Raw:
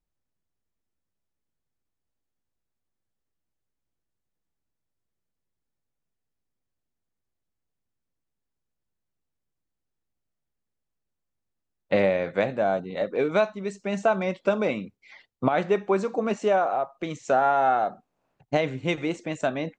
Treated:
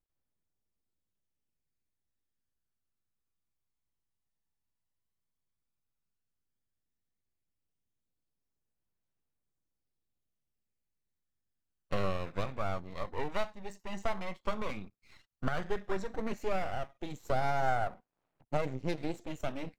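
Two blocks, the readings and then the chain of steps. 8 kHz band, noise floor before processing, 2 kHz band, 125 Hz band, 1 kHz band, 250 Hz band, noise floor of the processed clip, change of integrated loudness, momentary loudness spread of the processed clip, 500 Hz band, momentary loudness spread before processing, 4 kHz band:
n/a, -83 dBFS, -9.5 dB, -5.0 dB, -10.5 dB, -11.0 dB, -85 dBFS, -11.5 dB, 9 LU, -13.0 dB, 8 LU, -7.5 dB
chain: half-wave rectifier; phaser 0.11 Hz, delay 1.1 ms, feedback 38%; gain -6.5 dB

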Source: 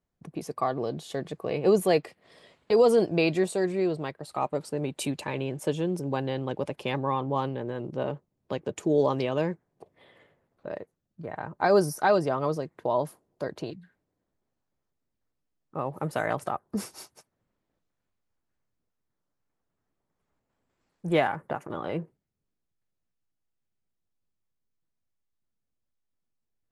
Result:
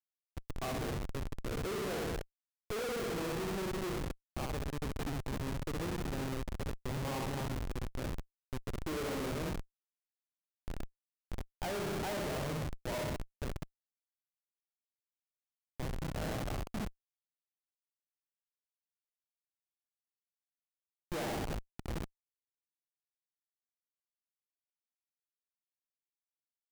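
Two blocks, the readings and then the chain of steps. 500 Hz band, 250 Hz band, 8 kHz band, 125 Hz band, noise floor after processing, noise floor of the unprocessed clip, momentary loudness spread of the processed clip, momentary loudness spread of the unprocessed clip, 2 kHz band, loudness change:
-14.5 dB, -10.0 dB, -4.5 dB, -5.0 dB, under -85 dBFS, -82 dBFS, 11 LU, 17 LU, -8.0 dB, -11.0 dB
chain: flutter echo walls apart 10.9 m, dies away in 1.1 s; Schmitt trigger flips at -25.5 dBFS; gain -8.5 dB

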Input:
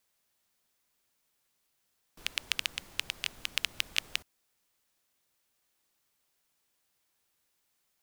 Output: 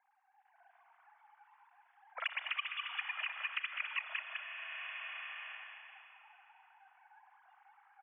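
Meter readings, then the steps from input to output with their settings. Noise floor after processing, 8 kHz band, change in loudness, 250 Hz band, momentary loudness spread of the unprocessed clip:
-72 dBFS, under -35 dB, -5.5 dB, under -35 dB, 6 LU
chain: sine-wave speech; LPF 2100 Hz 12 dB/oct; gate -60 dBFS, range -8 dB; bell 1200 Hz +13 dB 3 oct; harmonic-percussive split percussive -15 dB; differentiator; AGC gain up to 12 dB; low-pass opened by the level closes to 730 Hz, open at -43 dBFS; vibrato 9.6 Hz 6.8 cents; echo 0.203 s -6.5 dB; Schroeder reverb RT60 2.7 s, combs from 26 ms, DRR 8.5 dB; three-band squash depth 100%; gain +1.5 dB

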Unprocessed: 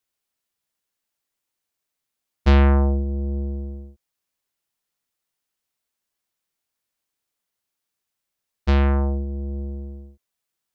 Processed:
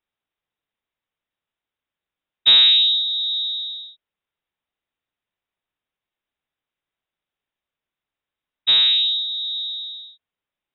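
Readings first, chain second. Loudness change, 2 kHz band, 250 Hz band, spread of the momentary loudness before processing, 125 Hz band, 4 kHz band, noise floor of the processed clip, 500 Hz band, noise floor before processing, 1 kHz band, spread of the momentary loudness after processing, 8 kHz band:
+6.5 dB, +2.0 dB, under -25 dB, 18 LU, under -30 dB, +29.0 dB, under -85 dBFS, under -15 dB, -83 dBFS, under -10 dB, 18 LU, n/a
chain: inverted band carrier 3800 Hz

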